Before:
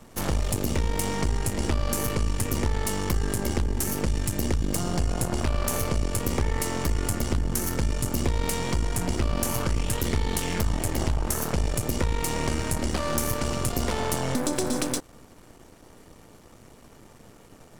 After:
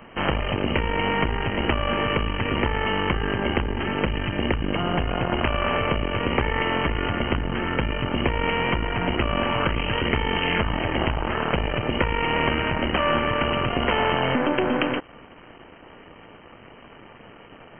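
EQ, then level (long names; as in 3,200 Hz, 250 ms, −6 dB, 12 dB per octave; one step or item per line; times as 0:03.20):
linear-phase brick-wall low-pass 3,200 Hz
spectral tilt +2.5 dB per octave
+8.5 dB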